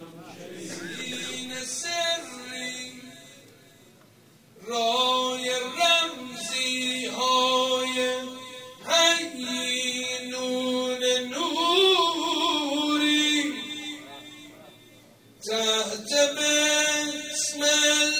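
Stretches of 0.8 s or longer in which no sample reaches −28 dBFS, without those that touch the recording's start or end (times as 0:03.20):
0:02.83–0:04.69
0:13.92–0:15.44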